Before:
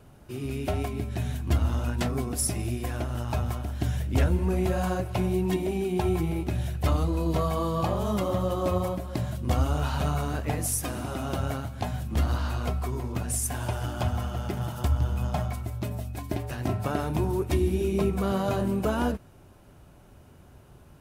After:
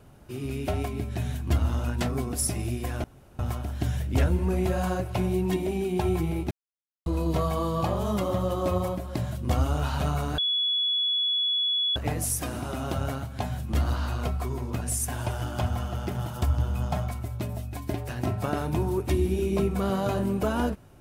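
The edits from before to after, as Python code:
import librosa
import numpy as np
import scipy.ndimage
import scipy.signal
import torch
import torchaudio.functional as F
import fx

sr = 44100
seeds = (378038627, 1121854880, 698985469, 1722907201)

y = fx.edit(x, sr, fx.room_tone_fill(start_s=3.04, length_s=0.35),
    fx.silence(start_s=6.51, length_s=0.55),
    fx.insert_tone(at_s=10.38, length_s=1.58, hz=3390.0, db=-22.5), tone=tone)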